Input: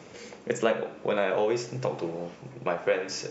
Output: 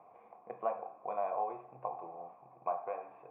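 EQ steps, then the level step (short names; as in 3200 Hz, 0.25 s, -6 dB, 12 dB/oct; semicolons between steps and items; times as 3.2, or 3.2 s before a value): vocal tract filter a; bell 2000 Hz +6.5 dB 0.99 oct; +3.0 dB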